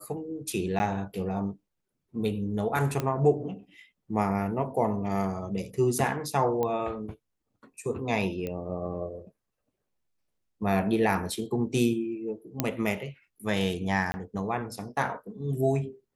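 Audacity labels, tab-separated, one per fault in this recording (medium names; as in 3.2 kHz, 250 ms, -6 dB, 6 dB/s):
0.790000	0.800000	dropout 10 ms
3.000000	3.000000	pop -15 dBFS
6.630000	6.630000	pop -17 dBFS
8.470000	8.470000	pop -21 dBFS
12.600000	12.600000	pop -9 dBFS
14.120000	14.140000	dropout 20 ms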